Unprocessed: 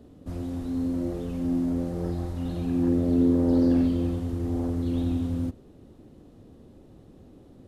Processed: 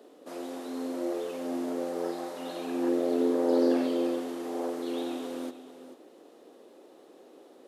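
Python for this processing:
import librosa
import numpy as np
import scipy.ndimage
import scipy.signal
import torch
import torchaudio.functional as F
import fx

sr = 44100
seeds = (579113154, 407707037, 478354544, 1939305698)

y = scipy.signal.sosfilt(scipy.signal.butter(4, 380.0, 'highpass', fs=sr, output='sos'), x)
y = y + 10.0 ** (-13.0 / 20.0) * np.pad(y, (int(440 * sr / 1000.0), 0))[:len(y)]
y = F.gain(torch.from_numpy(y), 5.0).numpy()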